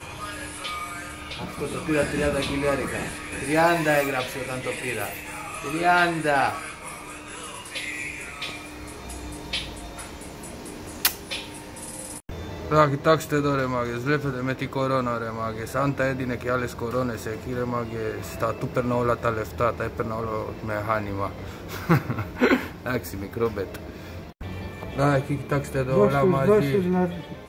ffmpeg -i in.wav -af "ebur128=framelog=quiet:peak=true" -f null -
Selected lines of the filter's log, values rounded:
Integrated loudness:
  I:         -25.6 LUFS
  Threshold: -36.1 LUFS
Loudness range:
  LRA:         7.0 LU
  Threshold: -46.3 LUFS
  LRA low:   -31.0 LUFS
  LRA high:  -24.0 LUFS
True peak:
  Peak:       -2.3 dBFS